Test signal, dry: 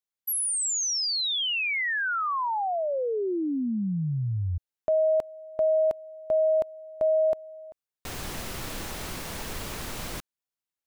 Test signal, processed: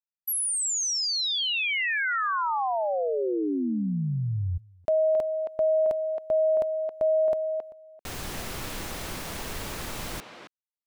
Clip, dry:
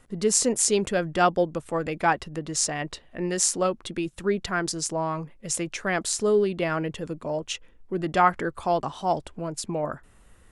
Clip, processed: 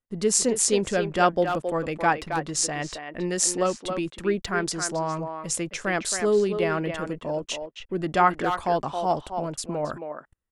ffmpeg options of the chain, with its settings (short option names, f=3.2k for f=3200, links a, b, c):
-filter_complex "[0:a]agate=range=-33dB:threshold=-47dB:ratio=16:release=26:detection=rms,asplit=2[a][b];[b]adelay=270,highpass=300,lowpass=3.4k,asoftclip=type=hard:threshold=-13.5dB,volume=-6dB[c];[a][c]amix=inputs=2:normalize=0"